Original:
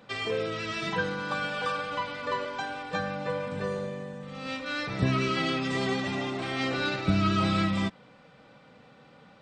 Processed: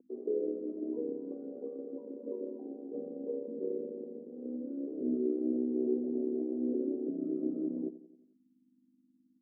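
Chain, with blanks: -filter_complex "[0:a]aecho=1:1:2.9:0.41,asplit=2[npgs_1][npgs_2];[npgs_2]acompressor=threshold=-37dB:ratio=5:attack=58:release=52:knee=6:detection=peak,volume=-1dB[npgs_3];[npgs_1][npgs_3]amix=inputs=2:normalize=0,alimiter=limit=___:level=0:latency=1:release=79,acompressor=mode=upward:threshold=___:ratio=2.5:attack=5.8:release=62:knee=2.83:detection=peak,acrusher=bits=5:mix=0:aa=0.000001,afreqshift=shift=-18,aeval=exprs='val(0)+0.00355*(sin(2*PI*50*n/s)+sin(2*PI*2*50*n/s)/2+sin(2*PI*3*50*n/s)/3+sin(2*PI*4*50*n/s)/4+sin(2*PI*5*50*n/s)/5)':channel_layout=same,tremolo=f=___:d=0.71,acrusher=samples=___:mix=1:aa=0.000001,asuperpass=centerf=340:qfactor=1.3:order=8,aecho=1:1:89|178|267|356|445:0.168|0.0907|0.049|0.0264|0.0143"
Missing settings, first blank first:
-15dB, -48dB, 69, 4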